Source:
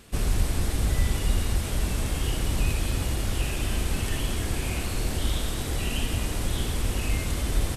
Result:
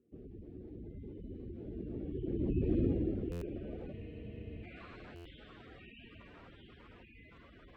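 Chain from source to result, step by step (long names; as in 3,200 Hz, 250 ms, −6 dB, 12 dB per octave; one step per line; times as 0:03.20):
source passing by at 0:02.77, 14 m/s, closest 3.3 metres
meter weighting curve D
gate on every frequency bin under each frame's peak −15 dB strong
dynamic equaliser 4,900 Hz, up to −4 dB, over −45 dBFS, Q 1
low-pass filter sweep 360 Hz → 1,200 Hz, 0:03.20–0:04.83
buffer that repeats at 0:03.31/0:05.15, samples 512, times 8
frozen spectrum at 0:03.94, 0.69 s
level +2.5 dB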